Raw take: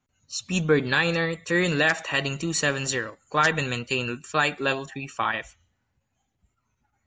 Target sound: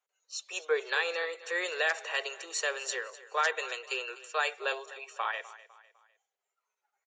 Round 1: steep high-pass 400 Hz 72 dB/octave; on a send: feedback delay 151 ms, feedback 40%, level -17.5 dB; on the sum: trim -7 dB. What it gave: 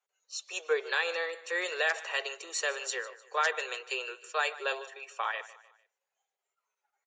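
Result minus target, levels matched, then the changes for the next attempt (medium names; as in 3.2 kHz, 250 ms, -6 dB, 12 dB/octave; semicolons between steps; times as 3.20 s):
echo 101 ms early
change: feedback delay 252 ms, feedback 40%, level -17.5 dB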